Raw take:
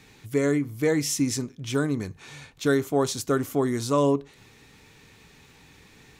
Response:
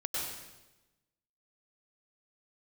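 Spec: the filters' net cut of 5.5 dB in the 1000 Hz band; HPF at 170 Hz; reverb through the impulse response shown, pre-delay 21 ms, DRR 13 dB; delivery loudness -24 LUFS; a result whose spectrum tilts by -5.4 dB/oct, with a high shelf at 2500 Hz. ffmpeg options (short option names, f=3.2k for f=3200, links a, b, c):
-filter_complex "[0:a]highpass=170,equalizer=f=1k:t=o:g=-6,highshelf=f=2.5k:g=-5.5,asplit=2[a][b];[1:a]atrim=start_sample=2205,adelay=21[c];[b][c]afir=irnorm=-1:irlink=0,volume=-17.5dB[d];[a][d]amix=inputs=2:normalize=0,volume=3dB"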